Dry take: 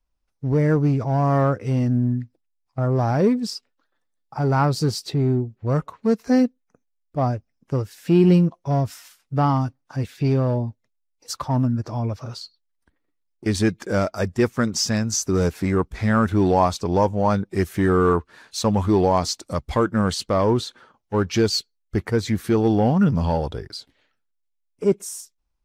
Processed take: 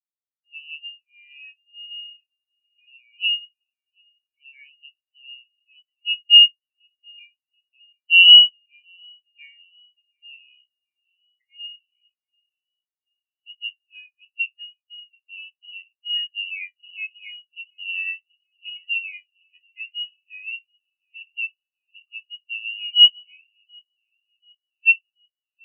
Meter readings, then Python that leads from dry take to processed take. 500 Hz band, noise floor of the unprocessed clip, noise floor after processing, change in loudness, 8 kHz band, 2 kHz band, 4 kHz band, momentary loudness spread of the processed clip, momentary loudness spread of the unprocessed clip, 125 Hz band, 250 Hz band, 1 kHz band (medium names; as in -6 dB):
under -40 dB, -73 dBFS, under -85 dBFS, +6.5 dB, under -40 dB, +10.0 dB, +17.5 dB, 23 LU, 12 LU, under -40 dB, under -40 dB, under -40 dB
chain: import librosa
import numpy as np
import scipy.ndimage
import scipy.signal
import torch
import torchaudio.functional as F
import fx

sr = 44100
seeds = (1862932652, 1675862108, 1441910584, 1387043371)

y = fx.spec_trails(x, sr, decay_s=0.37)
y = scipy.signal.sosfilt(scipy.signal.butter(8, 160.0, 'highpass', fs=sr, output='sos'), y)
y = fx.echo_filtered(y, sr, ms=733, feedback_pct=80, hz=1600.0, wet_db=-9.5)
y = fx.freq_invert(y, sr, carrier_hz=3100)
y = fx.spectral_expand(y, sr, expansion=4.0)
y = F.gain(torch.from_numpy(y), 2.0).numpy()